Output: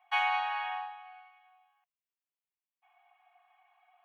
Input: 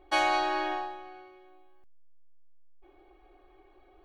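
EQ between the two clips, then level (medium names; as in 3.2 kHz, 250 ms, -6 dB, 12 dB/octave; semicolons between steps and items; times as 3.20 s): rippled Chebyshev high-pass 690 Hz, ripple 6 dB; high-order bell 6.5 kHz -15 dB; +1.5 dB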